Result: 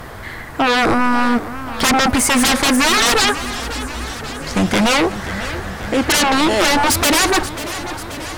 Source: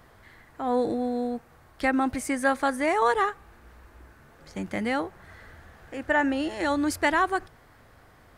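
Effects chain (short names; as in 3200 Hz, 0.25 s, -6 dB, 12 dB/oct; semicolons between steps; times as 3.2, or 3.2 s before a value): sine folder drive 18 dB, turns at -11 dBFS; warbling echo 0.537 s, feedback 67%, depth 138 cents, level -13.5 dB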